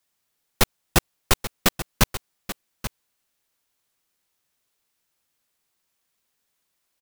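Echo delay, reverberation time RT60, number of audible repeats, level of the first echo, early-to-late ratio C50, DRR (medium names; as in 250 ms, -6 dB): 834 ms, no reverb, 1, -13.0 dB, no reverb, no reverb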